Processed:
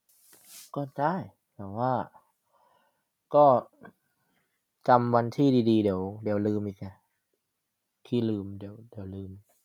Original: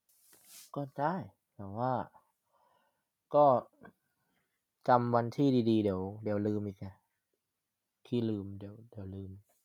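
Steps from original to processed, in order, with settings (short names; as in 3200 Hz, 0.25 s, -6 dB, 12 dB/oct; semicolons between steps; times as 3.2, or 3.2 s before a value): bell 73 Hz -9 dB 0.41 oct; gain +5.5 dB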